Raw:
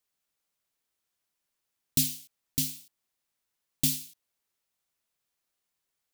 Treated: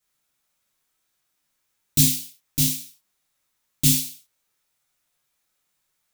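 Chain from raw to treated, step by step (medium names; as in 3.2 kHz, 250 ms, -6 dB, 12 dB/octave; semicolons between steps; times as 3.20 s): gated-style reverb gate 150 ms falling, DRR -8 dB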